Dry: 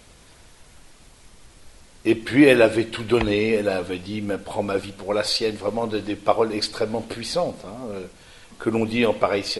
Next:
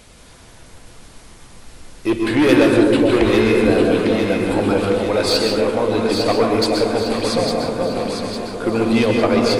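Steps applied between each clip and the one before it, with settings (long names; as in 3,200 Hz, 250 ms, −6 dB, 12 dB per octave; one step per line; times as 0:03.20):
soft clipping −15 dBFS, distortion −10 dB
delay that swaps between a low-pass and a high-pass 427 ms, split 840 Hz, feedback 72%, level −3 dB
on a send at −1.5 dB: convolution reverb RT60 0.95 s, pre-delay 117 ms
on the sum: level +4 dB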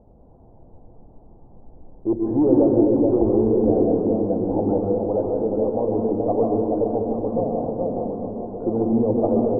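elliptic low-pass filter 820 Hz, stop band 70 dB
level −3 dB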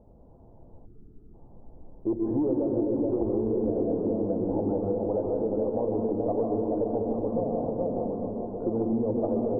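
gain on a spectral selection 0:00.85–0:01.34, 460–1,200 Hz −19 dB
notch filter 760 Hz, Q 15
downward compressor, threshold −20 dBFS, peak gain reduction 9.5 dB
level −3 dB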